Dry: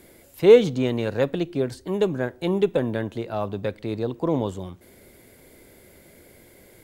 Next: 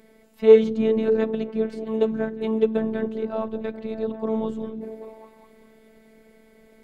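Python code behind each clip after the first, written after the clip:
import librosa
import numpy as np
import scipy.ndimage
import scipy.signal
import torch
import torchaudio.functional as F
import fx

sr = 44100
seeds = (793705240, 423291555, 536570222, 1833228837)

y = fx.lowpass(x, sr, hz=1900.0, slope=6)
y = fx.echo_stepped(y, sr, ms=198, hz=180.0, octaves=0.7, feedback_pct=70, wet_db=-4.0)
y = fx.robotise(y, sr, hz=221.0)
y = y * librosa.db_to_amplitude(1.0)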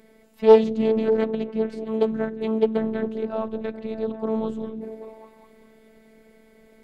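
y = fx.doppler_dist(x, sr, depth_ms=0.26)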